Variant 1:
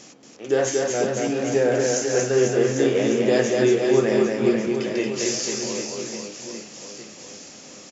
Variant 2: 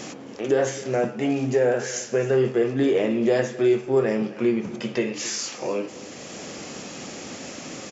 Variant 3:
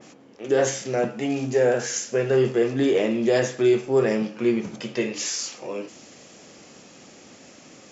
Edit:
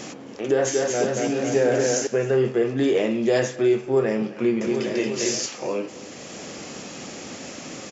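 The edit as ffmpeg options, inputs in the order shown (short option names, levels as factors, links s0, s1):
-filter_complex "[0:a]asplit=2[s0][s1];[1:a]asplit=4[s2][s3][s4][s5];[s2]atrim=end=0.652[s6];[s0]atrim=start=0.648:end=2.072[s7];[s3]atrim=start=2.068:end=2.782[s8];[2:a]atrim=start=2.778:end=3.562[s9];[s4]atrim=start=3.558:end=4.612[s10];[s1]atrim=start=4.608:end=5.462[s11];[s5]atrim=start=5.458[s12];[s6][s7]acrossfade=d=0.004:c1=hsin:c2=hsin[s13];[s13][s8]acrossfade=d=0.004:c1=hsin:c2=hsin[s14];[s14][s9]acrossfade=d=0.004:c1=hsin:c2=hsin[s15];[s15][s10]acrossfade=d=0.004:c1=hsin:c2=hsin[s16];[s16][s11]acrossfade=d=0.004:c1=hsin:c2=hsin[s17];[s17][s12]acrossfade=d=0.004:c1=hsin:c2=hsin"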